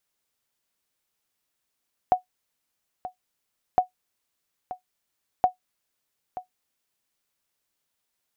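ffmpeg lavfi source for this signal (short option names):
-f lavfi -i "aevalsrc='0.335*(sin(2*PI*735*mod(t,1.66))*exp(-6.91*mod(t,1.66)/0.12)+0.178*sin(2*PI*735*max(mod(t,1.66)-0.93,0))*exp(-6.91*max(mod(t,1.66)-0.93,0)/0.12))':d=4.98:s=44100"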